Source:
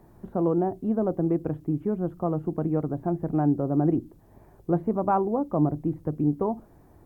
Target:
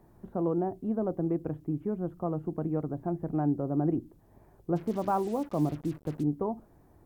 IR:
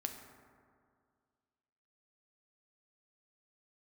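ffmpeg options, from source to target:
-filter_complex "[0:a]asplit=3[s0][s1][s2];[s0]afade=t=out:st=4.75:d=0.02[s3];[s1]acrusher=bits=6:mix=0:aa=0.5,afade=t=in:st=4.75:d=0.02,afade=t=out:st=6.22:d=0.02[s4];[s2]afade=t=in:st=6.22:d=0.02[s5];[s3][s4][s5]amix=inputs=3:normalize=0,volume=0.562"

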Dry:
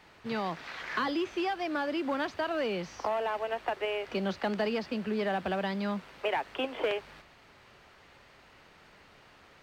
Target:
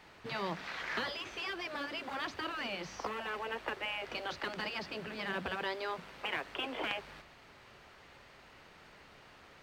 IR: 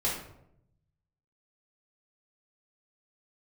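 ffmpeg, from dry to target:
-af "afftfilt=real='re*lt(hypot(re,im),0.126)':imag='im*lt(hypot(re,im),0.126)':win_size=1024:overlap=0.75,bandreject=f=95.98:t=h:w=4,bandreject=f=191.96:t=h:w=4,bandreject=f=287.94:t=h:w=4"

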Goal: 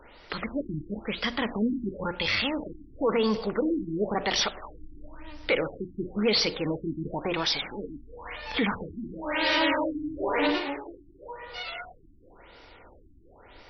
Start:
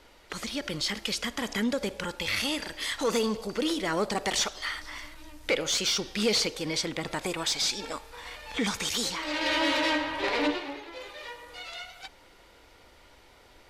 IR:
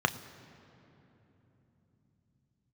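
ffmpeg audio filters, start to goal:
-filter_complex "[0:a]bandreject=f=60:t=h:w=6,bandreject=f=120:t=h:w=6,bandreject=f=180:t=h:w=6,bandreject=f=240:t=h:w=6,bandreject=f=300:t=h:w=6,bandreject=f=360:t=h:w=6,asplit=2[s0][s1];[s1]alimiter=limit=0.0631:level=0:latency=1:release=11,volume=1.41[s2];[s0][s2]amix=inputs=2:normalize=0,afftfilt=real='re*lt(b*sr/1024,340*pow(6000/340,0.5+0.5*sin(2*PI*0.97*pts/sr)))':imag='im*lt(b*sr/1024,340*pow(6000/340,0.5+0.5*sin(2*PI*0.97*pts/sr)))':win_size=1024:overlap=0.75,volume=0.75"

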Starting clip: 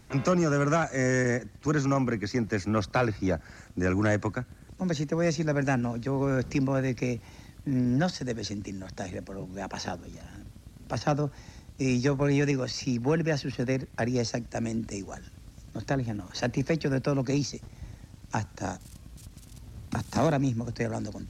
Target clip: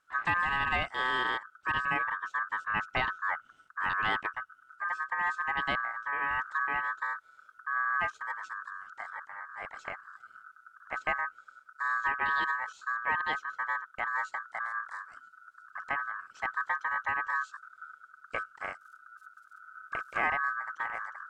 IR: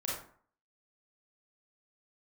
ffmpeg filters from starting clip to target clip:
-af "afwtdn=0.0251,aeval=exprs='val(0)*sin(2*PI*1400*n/s)':c=same,volume=0.794"

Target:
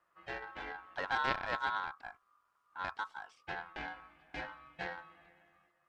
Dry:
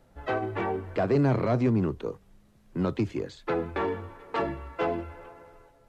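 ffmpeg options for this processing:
-af "aeval=exprs='val(0)*sin(2*PI*1200*n/s)':c=same,aeval=exprs='0.224*(cos(1*acos(clip(val(0)/0.224,-1,1)))-cos(1*PI/2))+0.0562*(cos(3*acos(clip(val(0)/0.224,-1,1)))-cos(3*PI/2))':c=same,volume=0.841"

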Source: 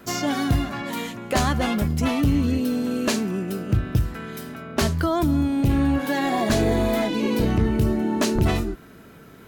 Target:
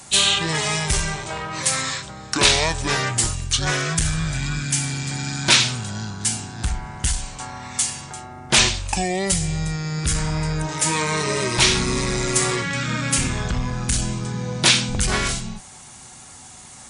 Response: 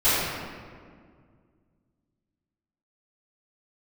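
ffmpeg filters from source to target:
-af "crystalizer=i=9:c=0,asetrate=24740,aresample=44100,volume=0.596"

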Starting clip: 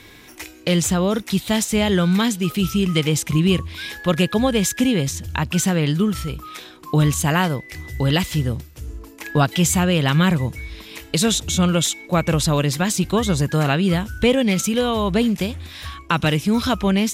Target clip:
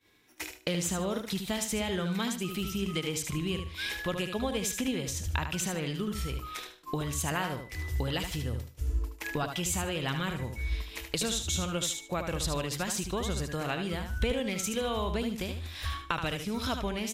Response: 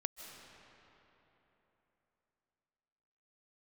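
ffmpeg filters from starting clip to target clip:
-af "acompressor=threshold=0.0398:ratio=3,agate=range=0.0224:threshold=0.0251:ratio=3:detection=peak,lowshelf=f=77:g=-9.5,aecho=1:1:75|150|225:0.447|0.103|0.0236,asubboost=boost=9:cutoff=51,volume=0.794"

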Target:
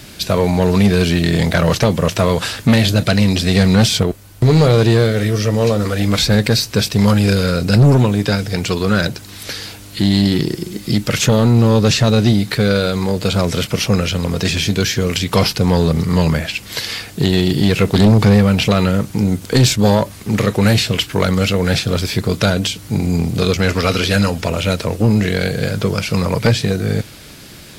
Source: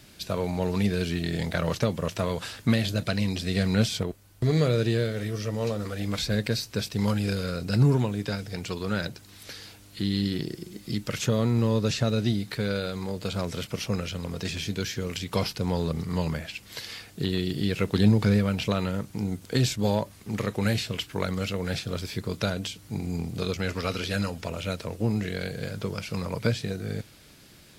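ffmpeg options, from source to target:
-af "aeval=exprs='0.376*sin(PI/2*2*val(0)/0.376)':c=same,acontrast=54,volume=0.891"

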